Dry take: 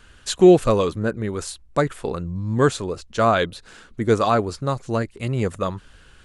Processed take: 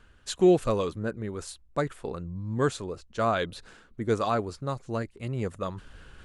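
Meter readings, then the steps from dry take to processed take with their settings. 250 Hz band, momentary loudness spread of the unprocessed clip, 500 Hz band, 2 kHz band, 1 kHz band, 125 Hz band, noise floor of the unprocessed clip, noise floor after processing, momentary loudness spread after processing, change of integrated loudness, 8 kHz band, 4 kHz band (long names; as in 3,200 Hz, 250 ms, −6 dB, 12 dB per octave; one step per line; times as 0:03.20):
−8.0 dB, 13 LU, −8.0 dB, −8.0 dB, −8.0 dB, −8.0 dB, −51 dBFS, −58 dBFS, 14 LU, −8.0 dB, −8.5 dB, −8.0 dB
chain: reversed playback
upward compression, threshold −28 dBFS
reversed playback
one half of a high-frequency compander decoder only
level −8 dB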